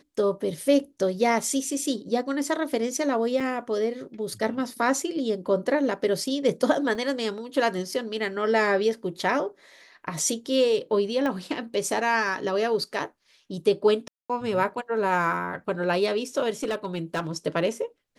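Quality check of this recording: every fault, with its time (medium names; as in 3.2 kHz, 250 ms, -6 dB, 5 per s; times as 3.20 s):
3.40 s: dropout 4.8 ms
6.95 s: dropout 3.5 ms
11.26 s: pop -17 dBFS
14.08–14.30 s: dropout 216 ms
16.63–17.37 s: clipped -22.5 dBFS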